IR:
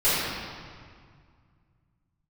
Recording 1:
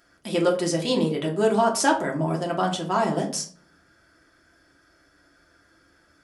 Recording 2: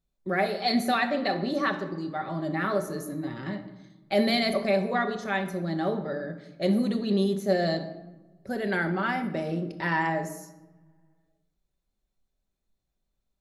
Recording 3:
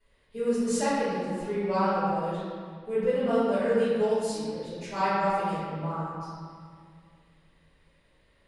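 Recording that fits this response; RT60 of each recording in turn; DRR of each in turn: 3; 0.50, 1.1, 2.0 s; -1.0, 5.5, -14.5 dB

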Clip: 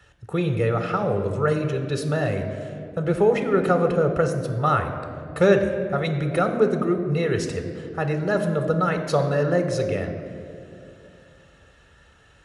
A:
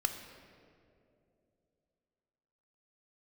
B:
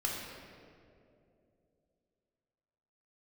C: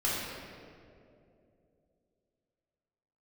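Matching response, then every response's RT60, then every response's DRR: A; 2.7, 2.7, 2.7 s; 6.0, -2.5, -7.5 dB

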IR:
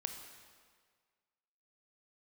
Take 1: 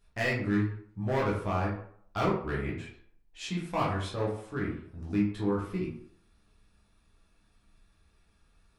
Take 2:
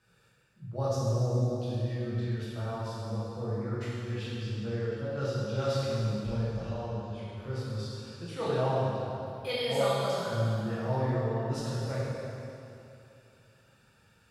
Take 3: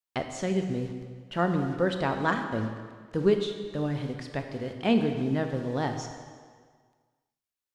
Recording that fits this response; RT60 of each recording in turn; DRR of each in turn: 3; 0.60, 2.8, 1.7 s; -6.0, -10.0, 5.5 dB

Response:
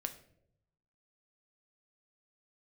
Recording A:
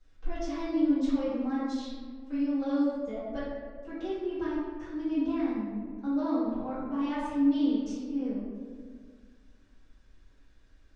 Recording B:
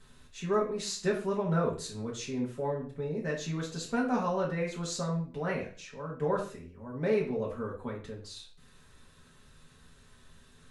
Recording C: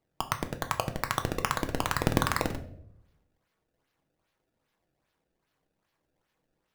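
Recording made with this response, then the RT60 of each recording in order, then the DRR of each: C; 1.8, 0.40, 0.75 s; -13.5, -5.0, 6.0 dB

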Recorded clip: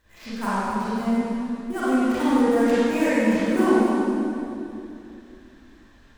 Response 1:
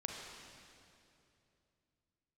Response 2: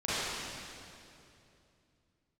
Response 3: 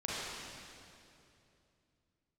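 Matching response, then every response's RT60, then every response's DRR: 2; 2.8, 2.8, 2.8 s; 0.0, -13.0, -8.0 dB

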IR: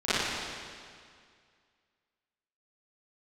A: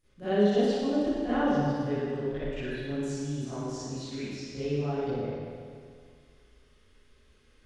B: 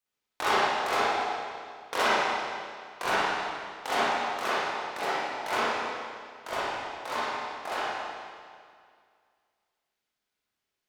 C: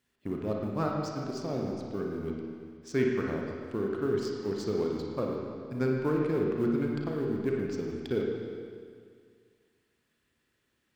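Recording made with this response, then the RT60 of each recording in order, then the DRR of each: A; 2.1, 2.1, 2.1 s; -18.5, -10.5, -1.0 dB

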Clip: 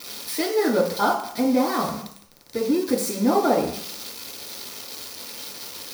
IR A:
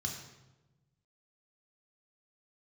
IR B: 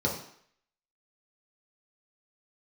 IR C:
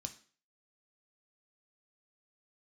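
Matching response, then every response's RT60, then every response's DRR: B; 1.1, 0.60, 0.45 s; 1.0, -3.5, 5.0 dB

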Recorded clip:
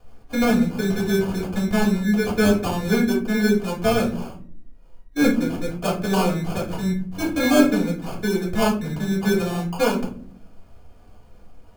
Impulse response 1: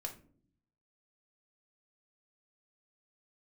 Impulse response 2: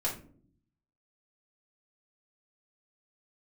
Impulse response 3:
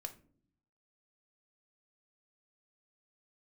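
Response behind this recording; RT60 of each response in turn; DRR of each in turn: 2; not exponential, not exponential, not exponential; 2.0, -5.5, 6.0 dB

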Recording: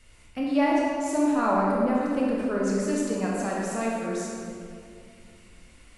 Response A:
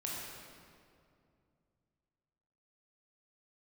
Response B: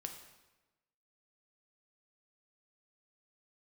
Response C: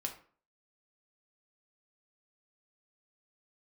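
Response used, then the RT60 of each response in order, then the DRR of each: A; 2.4, 1.1, 0.45 s; -4.5, 4.0, 2.5 dB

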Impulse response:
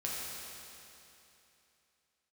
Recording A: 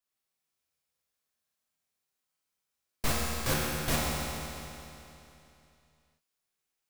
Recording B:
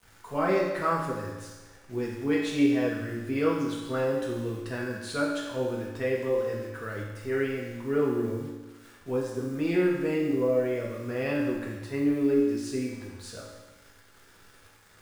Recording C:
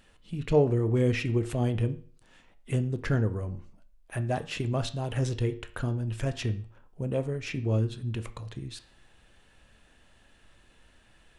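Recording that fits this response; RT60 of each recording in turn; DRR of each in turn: A; 3.0, 1.2, 0.45 s; -5.5, -4.0, 9.0 dB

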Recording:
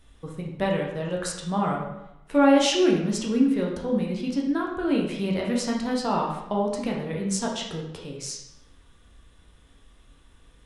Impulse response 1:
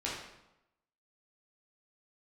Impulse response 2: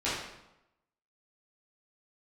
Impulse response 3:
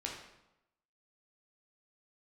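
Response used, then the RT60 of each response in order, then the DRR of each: 3; 0.90, 0.90, 0.90 s; -6.5, -11.5, -2.0 dB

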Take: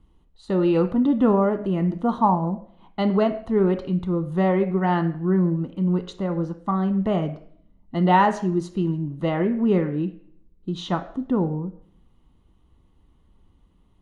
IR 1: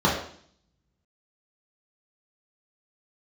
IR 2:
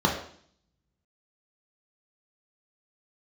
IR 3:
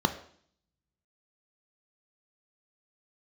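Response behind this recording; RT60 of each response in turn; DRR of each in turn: 3; 0.55, 0.55, 0.55 s; -6.0, -1.0, 7.5 dB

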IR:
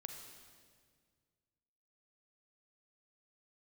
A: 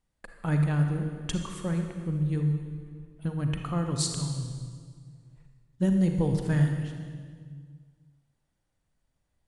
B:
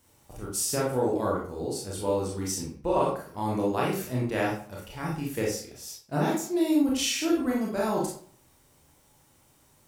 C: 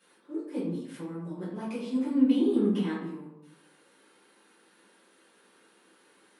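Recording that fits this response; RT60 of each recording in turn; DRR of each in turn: A; 1.9, 0.50, 0.85 s; 4.0, -4.0, -11.5 dB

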